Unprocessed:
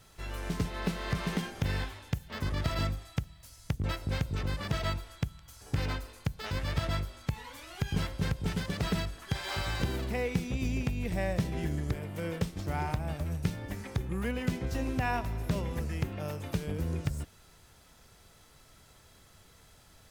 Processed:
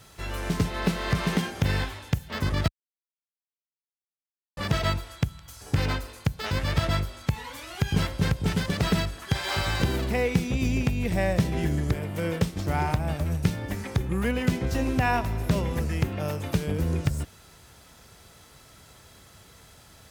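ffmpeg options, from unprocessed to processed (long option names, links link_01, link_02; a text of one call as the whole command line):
ffmpeg -i in.wav -filter_complex "[0:a]asplit=3[link_01][link_02][link_03];[link_01]atrim=end=2.68,asetpts=PTS-STARTPTS,afade=type=out:start_time=2.676:duration=0.004:curve=hsin[link_04];[link_02]atrim=start=2.68:end=4.57,asetpts=PTS-STARTPTS,volume=0[link_05];[link_03]atrim=start=4.57,asetpts=PTS-STARTPTS,afade=type=in:duration=0.004:curve=hsin[link_06];[link_04][link_05][link_06]concat=n=3:v=0:a=1,highpass=48,volume=7dB" out.wav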